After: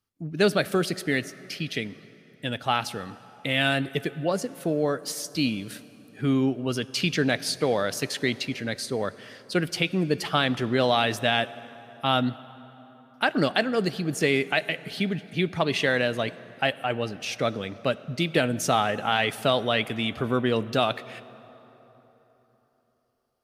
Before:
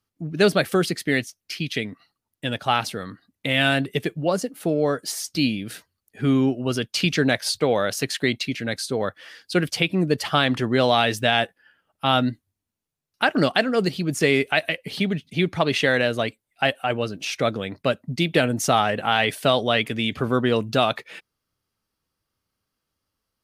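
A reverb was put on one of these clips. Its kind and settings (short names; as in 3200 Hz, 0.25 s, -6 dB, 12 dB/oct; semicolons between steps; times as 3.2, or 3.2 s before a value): plate-style reverb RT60 3.9 s, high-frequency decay 0.6×, DRR 16.5 dB; gain -3.5 dB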